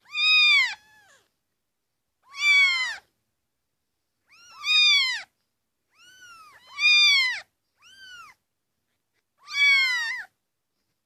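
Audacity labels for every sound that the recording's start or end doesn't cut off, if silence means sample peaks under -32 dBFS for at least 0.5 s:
2.370000	2.960000	sound
4.640000	5.220000	sound
6.780000	7.410000	sound
9.500000	10.210000	sound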